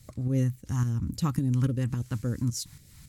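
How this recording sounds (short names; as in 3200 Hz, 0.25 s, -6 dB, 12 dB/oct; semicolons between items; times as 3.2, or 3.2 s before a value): tremolo saw up 3.6 Hz, depth 55%; phasing stages 2, 3.6 Hz, lowest notch 480–1000 Hz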